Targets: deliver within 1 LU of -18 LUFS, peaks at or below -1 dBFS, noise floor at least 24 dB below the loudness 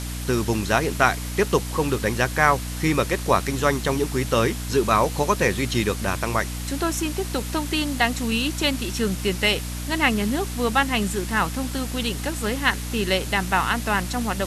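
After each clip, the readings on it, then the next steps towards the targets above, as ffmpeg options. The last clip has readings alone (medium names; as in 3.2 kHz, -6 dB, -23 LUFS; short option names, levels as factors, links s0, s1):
hum 60 Hz; highest harmonic 300 Hz; hum level -29 dBFS; noise floor -30 dBFS; noise floor target -47 dBFS; loudness -23.0 LUFS; peak level -2.0 dBFS; loudness target -18.0 LUFS
-> -af "bandreject=f=60:t=h:w=6,bandreject=f=120:t=h:w=6,bandreject=f=180:t=h:w=6,bandreject=f=240:t=h:w=6,bandreject=f=300:t=h:w=6"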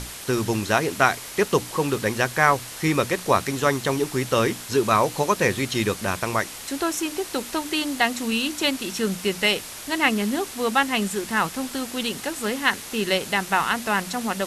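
hum not found; noise floor -37 dBFS; noise floor target -48 dBFS
-> -af "afftdn=nr=11:nf=-37"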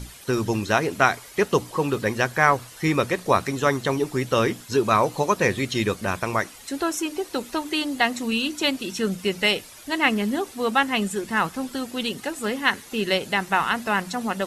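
noise floor -44 dBFS; noise floor target -48 dBFS
-> -af "afftdn=nr=6:nf=-44"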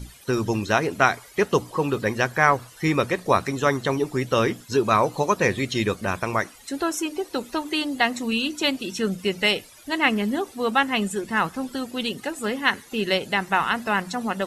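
noise floor -48 dBFS; loudness -23.5 LUFS; peak level -2.0 dBFS; loudness target -18.0 LUFS
-> -af "volume=1.88,alimiter=limit=0.891:level=0:latency=1"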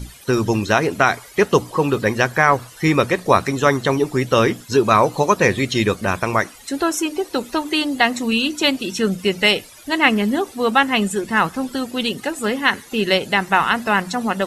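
loudness -18.5 LUFS; peak level -1.0 dBFS; noise floor -43 dBFS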